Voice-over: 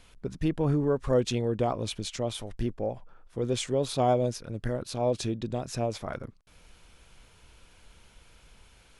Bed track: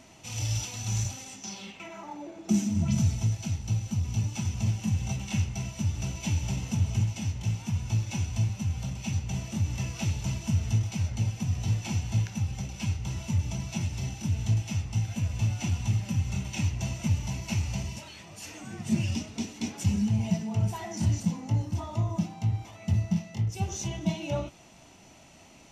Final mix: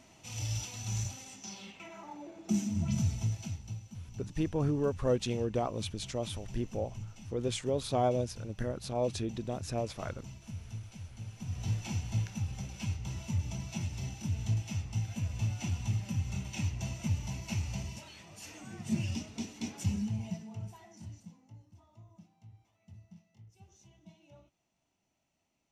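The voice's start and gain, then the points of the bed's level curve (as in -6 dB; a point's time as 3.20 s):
3.95 s, -4.5 dB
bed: 3.39 s -5.5 dB
3.90 s -16.5 dB
11.21 s -16.5 dB
11.66 s -5.5 dB
19.86 s -5.5 dB
21.62 s -27.5 dB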